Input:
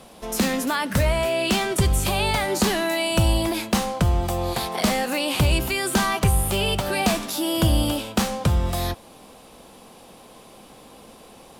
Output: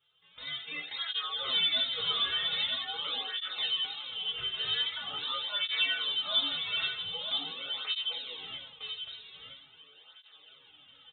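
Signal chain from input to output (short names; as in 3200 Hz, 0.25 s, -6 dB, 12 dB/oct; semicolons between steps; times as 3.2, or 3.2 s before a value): HPF 400 Hz 6 dB/oct; high shelf 2300 Hz -8.5 dB; AGC gain up to 15 dB; resonator bank C3 minor, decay 0.4 s; wow and flutter 29 cents; echo 0.998 s -6 dB; reverb RT60 0.65 s, pre-delay 3 ms, DRR 1 dB; speed mistake 24 fps film run at 25 fps; inverted band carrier 3900 Hz; tape flanging out of phase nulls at 0.44 Hz, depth 4 ms; gain -7 dB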